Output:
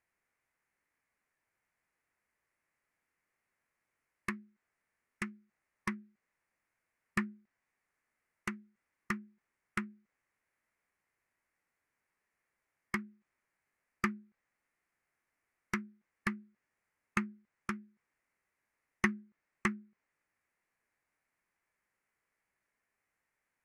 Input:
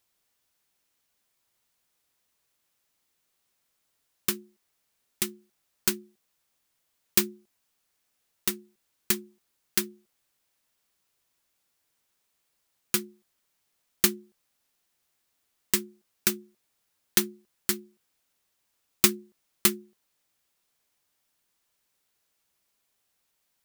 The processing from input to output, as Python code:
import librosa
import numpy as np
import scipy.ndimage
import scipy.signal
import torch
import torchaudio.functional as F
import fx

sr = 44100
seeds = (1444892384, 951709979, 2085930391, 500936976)

y = fx.env_lowpass_down(x, sr, base_hz=2900.0, full_db=-25.0)
y = fx.high_shelf_res(y, sr, hz=3600.0, db=-9.5, q=3.0)
y = fx.formant_shift(y, sr, semitones=-5)
y = y * 10.0 ** (-5.5 / 20.0)